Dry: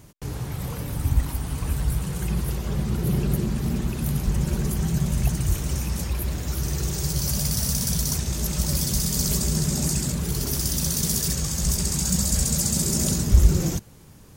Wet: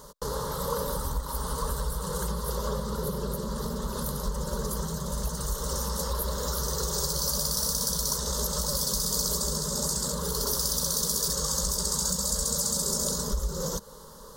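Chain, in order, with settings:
phaser with its sweep stopped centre 490 Hz, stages 8
downward compressor, threshold −30 dBFS, peak gain reduction 14.5 dB
graphic EQ with 10 bands 125 Hz −7 dB, 250 Hz −6 dB, 500 Hz +8 dB, 1,000 Hz +9 dB, 2,000 Hz −5 dB, 4,000 Hz +8 dB
level +4.5 dB

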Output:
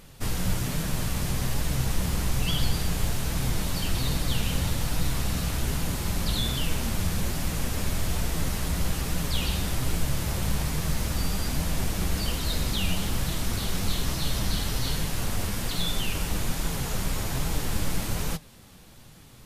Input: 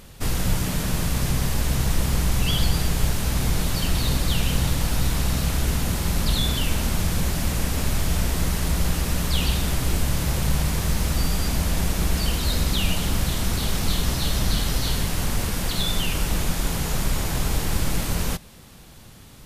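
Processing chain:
flanger 1.2 Hz, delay 5.8 ms, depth 5.6 ms, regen +57%

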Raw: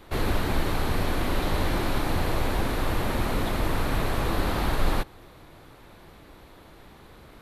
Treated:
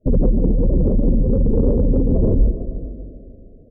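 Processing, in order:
wrong playback speed 7.5 ips tape played at 15 ips
downward expander −37 dBFS
low-shelf EQ 89 Hz +9.5 dB
in parallel at 0 dB: brickwall limiter −15.5 dBFS, peak gain reduction 10 dB
on the sum: treble cut that deepens with the level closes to 720 Hz, closed at −10 dBFS
octave-band graphic EQ 250/500/1,000/2,000 Hz +9/+10/−9/−10 dB
gate on every frequency bin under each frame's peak −15 dB strong
convolution reverb RT60 3.0 s, pre-delay 112 ms, DRR 13 dB
soft clipping −5.5 dBFS, distortion −23 dB
repeating echo 146 ms, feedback 50%, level −13.5 dB
one half of a high-frequency compander encoder only

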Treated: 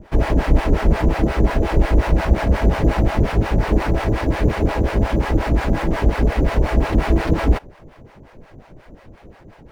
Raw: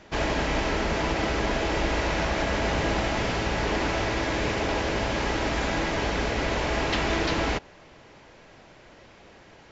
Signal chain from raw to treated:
two-band tremolo in antiphase 5.6 Hz, depth 100%, crossover 590 Hz
in parallel at −3 dB: sample-rate reduction 6,600 Hz, jitter 0%
on the sum: spectral tilt −2.5 dB per octave
level +3.5 dB

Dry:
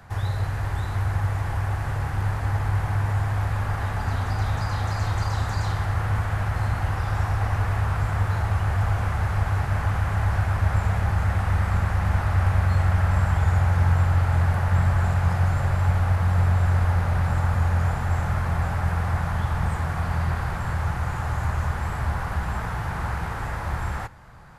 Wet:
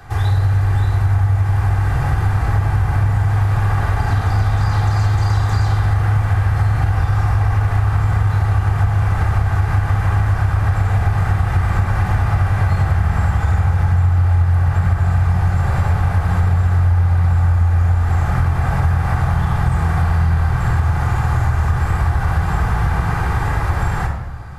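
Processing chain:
rectangular room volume 3,200 cubic metres, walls furnished, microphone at 3.7 metres
downward compressor, threshold −18 dBFS, peak gain reduction 12.5 dB
level +6 dB

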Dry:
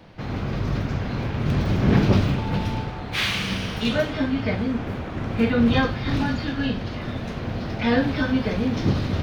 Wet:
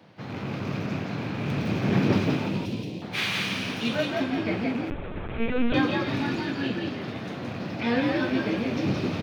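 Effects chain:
loose part that buzzes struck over −25 dBFS, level −29 dBFS
high-pass filter 110 Hz 24 dB per octave
dynamic equaliser 2,400 Hz, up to +4 dB, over −47 dBFS, Q 7.9
0:02.48–0:03.02: Butterworth band-reject 1,200 Hz, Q 0.51
on a send: echo with shifted repeats 171 ms, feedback 31%, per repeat +63 Hz, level −3 dB
0:04.90–0:05.74: on the sum: linear-prediction vocoder at 8 kHz pitch kept
level −5 dB

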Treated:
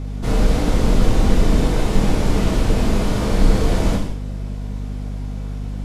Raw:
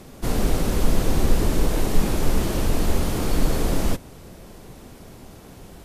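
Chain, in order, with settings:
high-frequency loss of the air 54 metres
reverb whose tail is shaped and stops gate 250 ms falling, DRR −2.5 dB
mains hum 50 Hz, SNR 10 dB

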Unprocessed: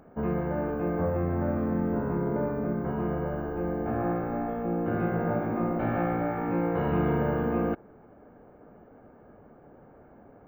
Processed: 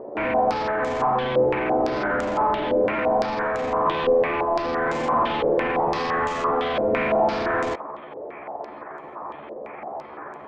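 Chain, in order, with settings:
pitch shift by two crossfaded delay taps +6.5 semitones
mid-hump overdrive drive 29 dB, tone 1,300 Hz, clips at −15 dBFS
low-pass on a step sequencer 5.9 Hz 520–7,200 Hz
level −3 dB

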